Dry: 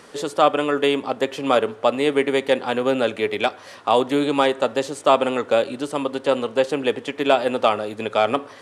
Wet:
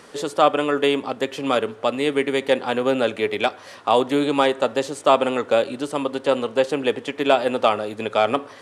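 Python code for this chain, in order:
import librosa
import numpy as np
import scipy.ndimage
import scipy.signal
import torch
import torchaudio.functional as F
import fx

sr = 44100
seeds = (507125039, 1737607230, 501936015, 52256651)

y = fx.dynamic_eq(x, sr, hz=730.0, q=0.83, threshold_db=-28.0, ratio=4.0, max_db=-4, at=(1.06, 2.42))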